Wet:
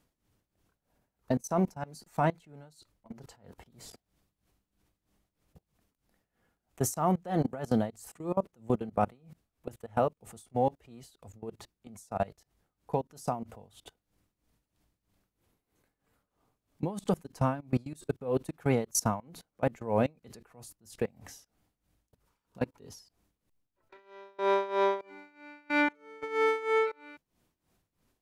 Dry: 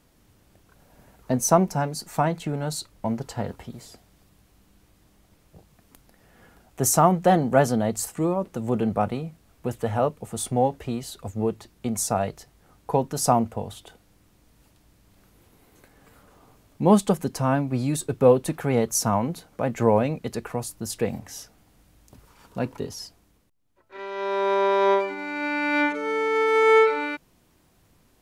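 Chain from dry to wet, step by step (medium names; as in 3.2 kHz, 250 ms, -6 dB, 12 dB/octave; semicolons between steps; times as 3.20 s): level held to a coarse grid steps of 24 dB; tremolo 3.1 Hz, depth 84%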